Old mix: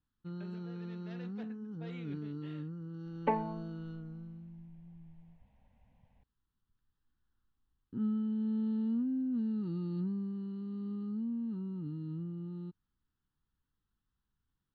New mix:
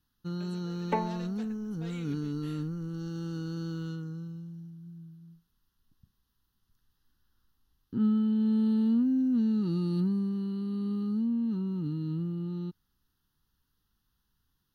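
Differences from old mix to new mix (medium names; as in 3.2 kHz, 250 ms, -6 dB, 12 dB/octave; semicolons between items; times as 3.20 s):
first sound +7.0 dB; second sound: entry -2.35 s; master: remove distance through air 280 m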